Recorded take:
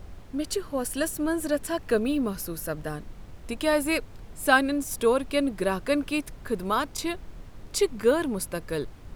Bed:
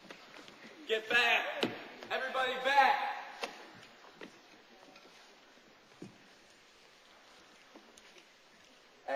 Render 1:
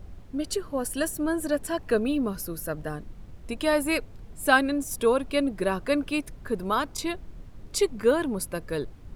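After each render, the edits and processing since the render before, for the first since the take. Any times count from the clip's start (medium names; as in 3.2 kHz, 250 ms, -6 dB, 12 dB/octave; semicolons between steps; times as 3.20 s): noise reduction 6 dB, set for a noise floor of -46 dBFS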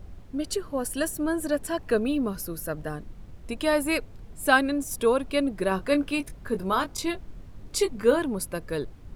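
5.69–8.19 s: doubling 21 ms -8.5 dB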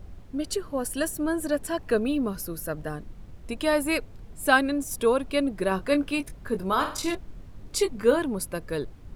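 6.73–7.15 s: flutter echo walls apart 8.5 m, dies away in 0.42 s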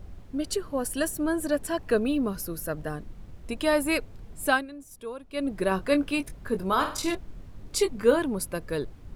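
4.44–5.52 s: dip -15 dB, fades 0.22 s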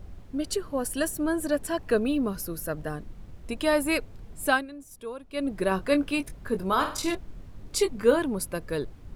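no audible change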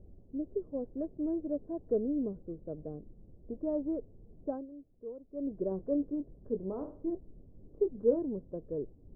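inverse Chebyshev low-pass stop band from 2.9 kHz, stop band 80 dB; bass shelf 290 Hz -12 dB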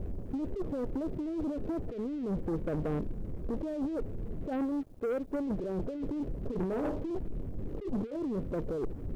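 compressor with a negative ratio -42 dBFS, ratio -1; waveshaping leveller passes 3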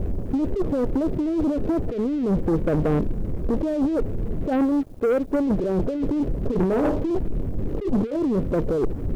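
trim +11.5 dB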